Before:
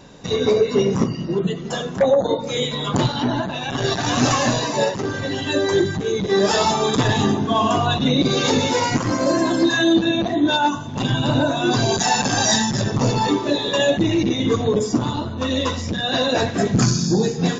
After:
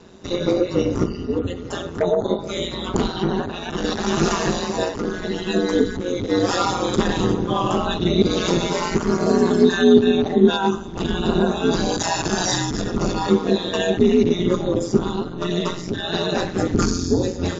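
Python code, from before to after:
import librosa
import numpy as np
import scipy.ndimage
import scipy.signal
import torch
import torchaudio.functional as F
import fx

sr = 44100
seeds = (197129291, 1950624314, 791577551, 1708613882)

y = fx.small_body(x, sr, hz=(310.0, 1300.0), ring_ms=50, db=11)
y = y * np.sin(2.0 * np.pi * 89.0 * np.arange(len(y)) / sr)
y = y * librosa.db_to_amplitude(-1.5)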